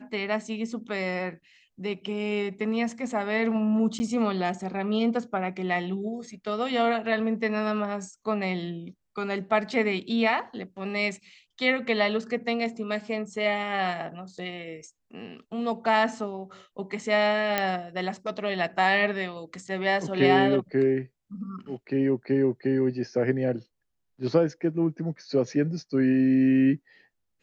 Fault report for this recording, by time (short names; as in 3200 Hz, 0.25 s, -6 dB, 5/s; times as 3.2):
3.99–4 gap 10 ms
17.58 pop -9 dBFS